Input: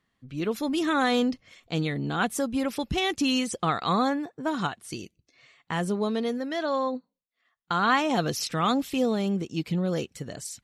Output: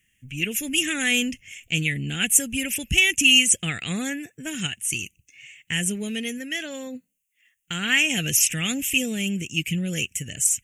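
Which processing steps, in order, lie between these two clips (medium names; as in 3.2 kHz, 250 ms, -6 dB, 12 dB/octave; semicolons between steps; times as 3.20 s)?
FFT filter 100 Hz 0 dB, 570 Hz -16 dB, 1.1 kHz -29 dB, 1.7 kHz -2 dB, 2.8 kHz +12 dB, 4.2 kHz -19 dB, 6.6 kHz +12 dB; trim +6.5 dB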